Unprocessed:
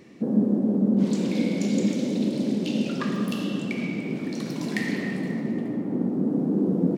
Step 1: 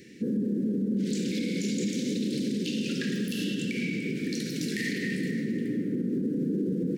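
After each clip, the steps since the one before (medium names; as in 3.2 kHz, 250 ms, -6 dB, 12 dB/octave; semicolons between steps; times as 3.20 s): elliptic band-stop 480–1600 Hz, stop band 40 dB; treble shelf 2.3 kHz +7.5 dB; peak limiter -21.5 dBFS, peak gain reduction 10 dB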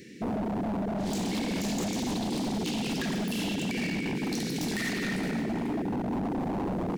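wavefolder -27.5 dBFS; trim +2 dB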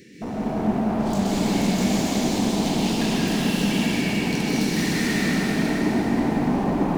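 plate-style reverb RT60 5 s, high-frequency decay 0.8×, pre-delay 115 ms, DRR -7.5 dB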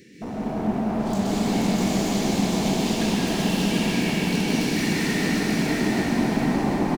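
feedback delay 740 ms, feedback 34%, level -3.5 dB; trim -2 dB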